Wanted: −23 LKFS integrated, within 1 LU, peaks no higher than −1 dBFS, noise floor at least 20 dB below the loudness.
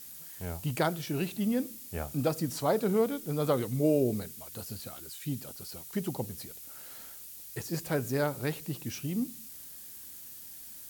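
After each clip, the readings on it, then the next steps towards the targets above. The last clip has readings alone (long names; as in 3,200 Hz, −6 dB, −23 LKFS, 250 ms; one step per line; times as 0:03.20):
background noise floor −47 dBFS; target noise floor −53 dBFS; integrated loudness −33.0 LKFS; sample peak −13.5 dBFS; target loudness −23.0 LKFS
→ noise reduction from a noise print 6 dB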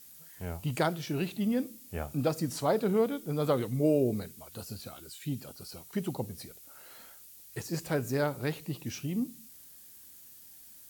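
background noise floor −53 dBFS; integrated loudness −32.5 LKFS; sample peak −13.5 dBFS; target loudness −23.0 LKFS
→ level +9.5 dB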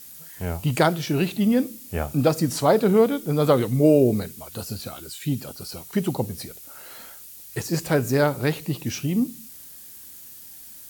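integrated loudness −23.0 LKFS; sample peak −4.0 dBFS; background noise floor −43 dBFS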